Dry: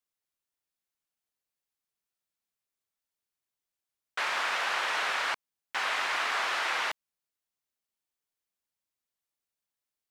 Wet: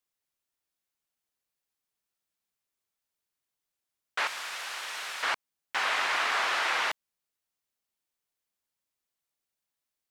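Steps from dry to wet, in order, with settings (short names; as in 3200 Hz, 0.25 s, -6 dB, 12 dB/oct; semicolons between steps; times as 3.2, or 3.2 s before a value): 4.27–5.23 pre-emphasis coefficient 0.8; gain +2 dB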